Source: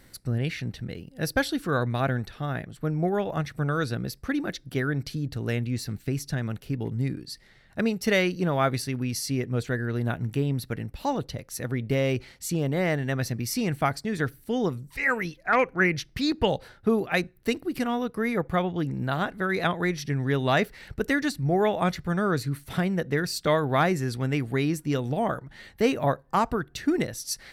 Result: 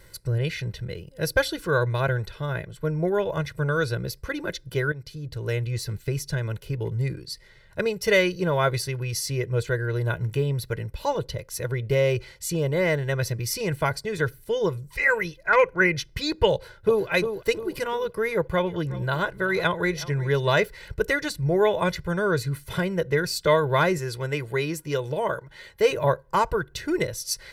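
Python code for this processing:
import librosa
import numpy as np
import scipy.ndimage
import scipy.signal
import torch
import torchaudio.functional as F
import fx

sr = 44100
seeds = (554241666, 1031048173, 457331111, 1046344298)

y = fx.echo_throw(x, sr, start_s=16.53, length_s=0.54, ms=350, feedback_pct=45, wet_db=-7.5)
y = fx.echo_single(y, sr, ms=368, db=-18.0, at=(18.65, 20.49), fade=0.02)
y = fx.low_shelf(y, sr, hz=150.0, db=-9.0, at=(23.98, 25.91))
y = fx.edit(y, sr, fx.fade_in_from(start_s=4.92, length_s=0.77, floor_db=-12.5), tone=tone)
y = y + 0.93 * np.pad(y, (int(2.0 * sr / 1000.0), 0))[:len(y)]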